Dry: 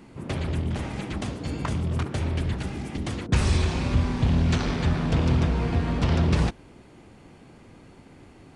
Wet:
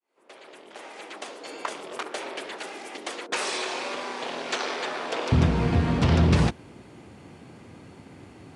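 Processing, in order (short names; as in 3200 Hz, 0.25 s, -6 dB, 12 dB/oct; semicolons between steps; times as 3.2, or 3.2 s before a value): opening faded in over 1.91 s; HPF 420 Hz 24 dB/oct, from 5.32 s 72 Hz; gain +3 dB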